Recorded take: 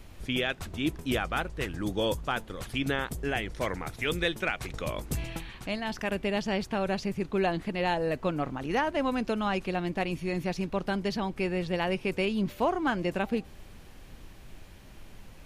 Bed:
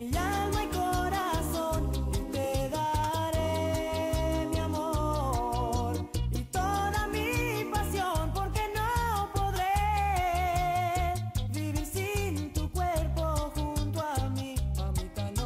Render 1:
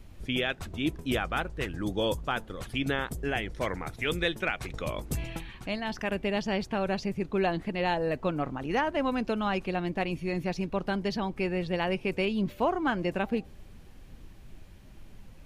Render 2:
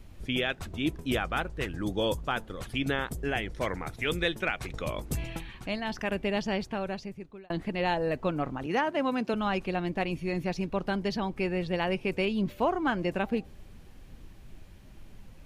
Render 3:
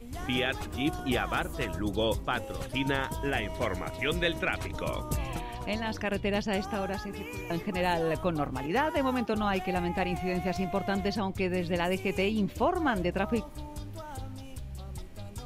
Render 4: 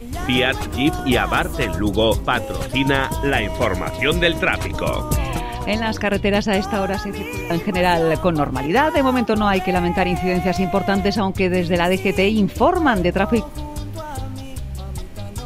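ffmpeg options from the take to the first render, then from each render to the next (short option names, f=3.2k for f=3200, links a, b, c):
-af "afftdn=nr=6:nf=-49"
-filter_complex "[0:a]asettb=1/sr,asplit=3[a][b][c];[a]atrim=end=8.664[d];[b]atrim=start=8.66:end=9.34,asetpts=PTS-STARTPTS,afade=t=in:d=0.004:c=qsin,afade=t=out:st=0.676:d=0.004:c=qsin,highpass=f=120:w=0.5412,highpass=f=120:w=1.3066[e];[c]atrim=start=9.336[f];[d][e]acrossfade=d=0.004:c1=hsin:c2=qsin[g];[g][f]acrossfade=d=0.004:c1=qsin:c2=hsin,asplit=2[h][i];[h]atrim=end=7.5,asetpts=PTS-STARTPTS,afade=t=out:st=6.46:d=1.04[j];[i]atrim=start=7.5,asetpts=PTS-STARTPTS,afade=t=in:d=0.004:c=hsin[k];[j][k]concat=n=2:v=0:a=1"
-filter_complex "[1:a]volume=-10dB[a];[0:a][a]amix=inputs=2:normalize=0"
-af "volume=11.5dB"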